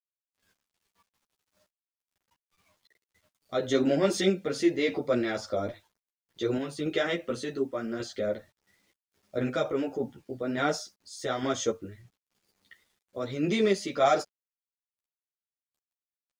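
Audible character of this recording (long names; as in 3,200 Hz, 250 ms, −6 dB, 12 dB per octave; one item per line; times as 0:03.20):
sample-and-hold tremolo
a quantiser's noise floor 12 bits, dither none
a shimmering, thickened sound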